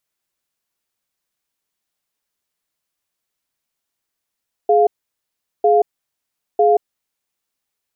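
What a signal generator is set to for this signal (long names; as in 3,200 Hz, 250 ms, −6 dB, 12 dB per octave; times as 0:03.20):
tone pair in a cadence 419 Hz, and 700 Hz, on 0.18 s, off 0.77 s, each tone −12.5 dBFS 2.59 s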